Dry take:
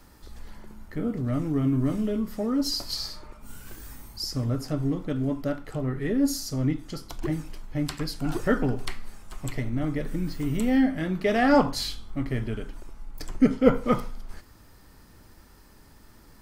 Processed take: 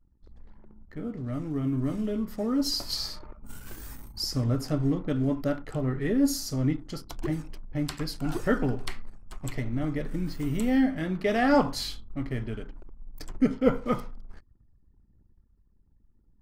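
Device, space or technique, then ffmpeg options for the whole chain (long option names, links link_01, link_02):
voice memo with heavy noise removal: -af "anlmdn=0.0158,dynaudnorm=framelen=210:gausssize=21:maxgain=8dB,volume=-7dB"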